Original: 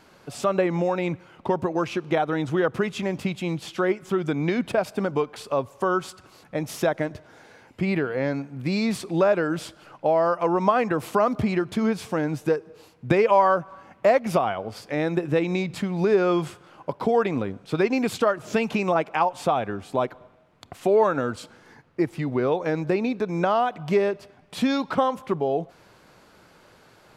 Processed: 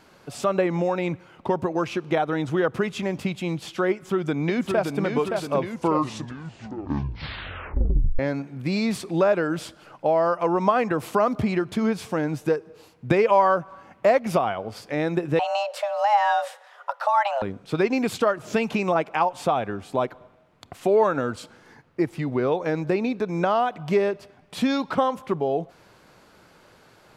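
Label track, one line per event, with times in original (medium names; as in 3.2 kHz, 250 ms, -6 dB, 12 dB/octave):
3.910000	5.010000	echo throw 570 ms, feedback 60%, level -4.5 dB
5.540000	5.540000	tape stop 2.65 s
15.390000	17.420000	frequency shift +410 Hz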